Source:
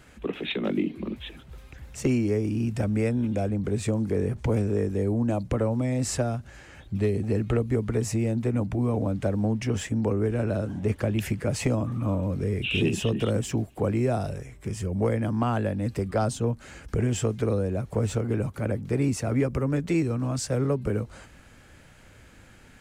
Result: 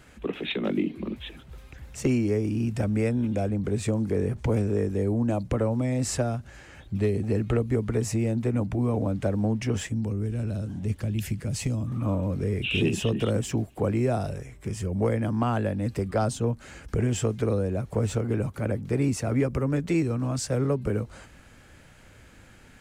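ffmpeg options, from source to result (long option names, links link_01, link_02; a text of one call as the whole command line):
ffmpeg -i in.wav -filter_complex "[0:a]asettb=1/sr,asplit=3[link_01][link_02][link_03];[link_01]atrim=end=9.874[link_04];[link_02]atrim=start=9.87:end=11.92,asetpts=PTS-STARTPTS,afade=type=in:duration=0.004:curve=qsin,afade=type=out:start_time=2.046:duration=0.004:curve=qsin,acrossover=split=240|3000[link_05][link_06][link_07];[link_06]acompressor=threshold=-50dB:ratio=2:attack=3.2:release=140:knee=2.83:detection=peak[link_08];[link_05][link_08][link_07]amix=inputs=3:normalize=0[link_09];[link_03]atrim=start=11.916[link_10];[link_04][link_09]acrossfade=duration=0.004:curve1=hsin:curve2=qsin[link_11];[link_11][link_10]acrossfade=duration=0.004:curve1=qsin:curve2=hsin" out.wav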